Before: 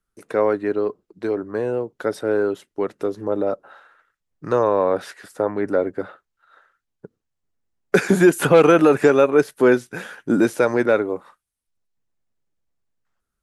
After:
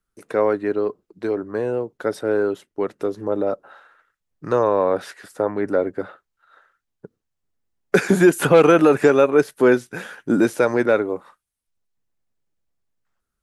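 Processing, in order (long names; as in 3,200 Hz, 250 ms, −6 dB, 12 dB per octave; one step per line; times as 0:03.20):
0:01.97–0:03.00: one half of a high-frequency compander decoder only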